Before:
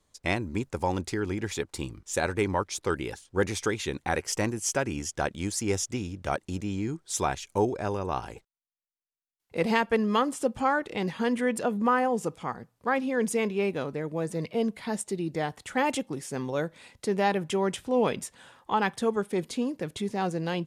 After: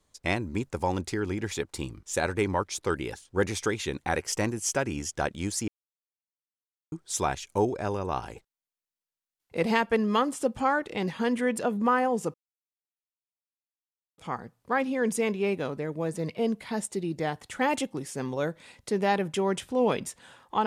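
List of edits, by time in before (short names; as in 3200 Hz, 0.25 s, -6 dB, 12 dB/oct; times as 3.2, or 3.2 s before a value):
5.68–6.92 mute
12.34 insert silence 1.84 s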